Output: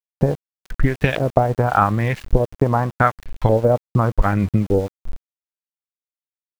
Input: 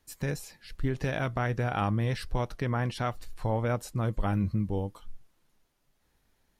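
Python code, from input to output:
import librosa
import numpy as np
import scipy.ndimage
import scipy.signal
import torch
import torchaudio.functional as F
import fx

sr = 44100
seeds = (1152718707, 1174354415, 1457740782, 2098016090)

y = fx.filter_lfo_lowpass(x, sr, shape='saw_up', hz=0.86, low_hz=440.0, high_hz=3300.0, q=2.1)
y = fx.transient(y, sr, attack_db=8, sustain_db=-9)
y = np.where(np.abs(y) >= 10.0 ** (-41.5 / 20.0), y, 0.0)
y = y * librosa.db_to_amplitude(8.0)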